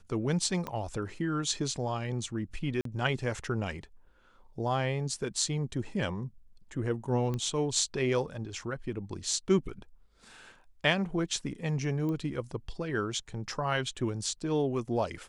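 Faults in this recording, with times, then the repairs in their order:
0.67 pop -21 dBFS
2.81–2.85 gap 43 ms
7.34 pop -22 dBFS
12.09 pop -25 dBFS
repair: de-click; interpolate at 2.81, 43 ms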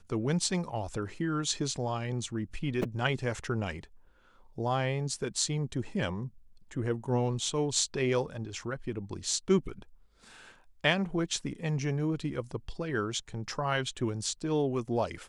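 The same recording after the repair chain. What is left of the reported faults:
0.67 pop

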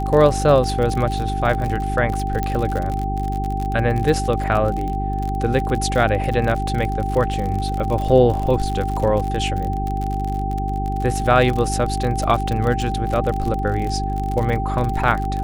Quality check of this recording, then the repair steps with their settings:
crackle 49/s -23 dBFS
hum 50 Hz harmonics 8 -24 dBFS
tone 780 Hz -25 dBFS
2.43 pop -10 dBFS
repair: de-click; notch 780 Hz, Q 30; de-hum 50 Hz, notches 8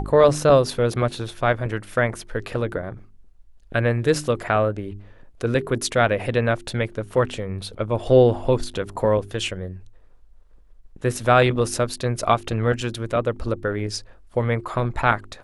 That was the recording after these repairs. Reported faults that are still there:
none

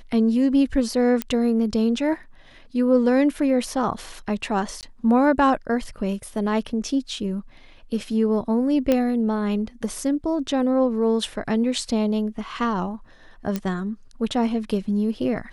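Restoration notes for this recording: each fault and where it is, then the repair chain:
1.22 pop -9 dBFS
4.81–4.83 gap 18 ms
8.92 pop -8 dBFS
13.56 pop -12 dBFS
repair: de-click; interpolate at 4.81, 18 ms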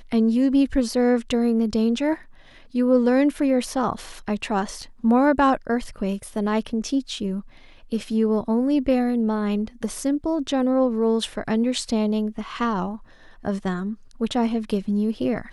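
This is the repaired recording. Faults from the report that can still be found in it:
none

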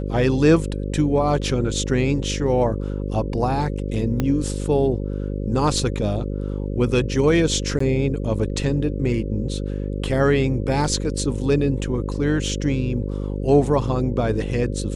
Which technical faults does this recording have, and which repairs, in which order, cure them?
buzz 50 Hz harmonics 11 -26 dBFS
4.2 pop -9 dBFS
7.79–7.8 gap 14 ms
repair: de-click; de-hum 50 Hz, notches 11; interpolate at 7.79, 14 ms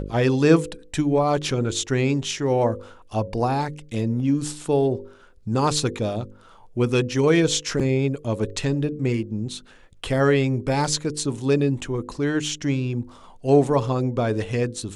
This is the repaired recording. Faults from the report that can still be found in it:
4.2 pop

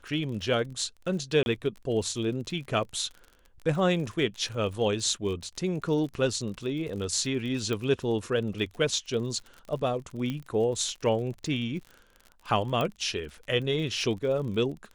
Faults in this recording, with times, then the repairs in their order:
crackle 39/s -37 dBFS
1.43–1.46 gap 31 ms
7.73 pop -19 dBFS
10.3 pop -20 dBFS
12.81 pop -16 dBFS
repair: de-click; interpolate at 1.43, 31 ms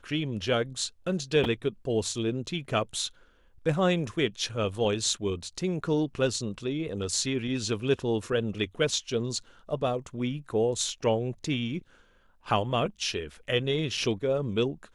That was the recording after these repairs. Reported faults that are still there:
12.81 pop

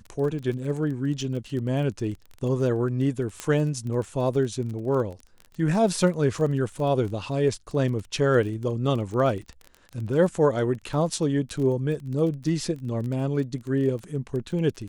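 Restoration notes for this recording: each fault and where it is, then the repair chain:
crackle 23/s -32 dBFS
3.4 pop -15 dBFS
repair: de-click

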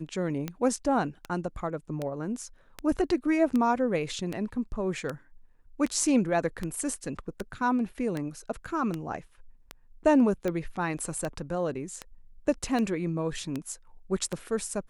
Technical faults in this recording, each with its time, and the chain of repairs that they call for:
tick 78 rpm -18 dBFS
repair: de-click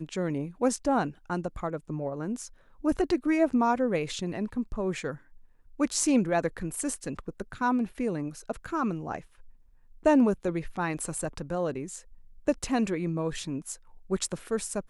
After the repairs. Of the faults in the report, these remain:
none

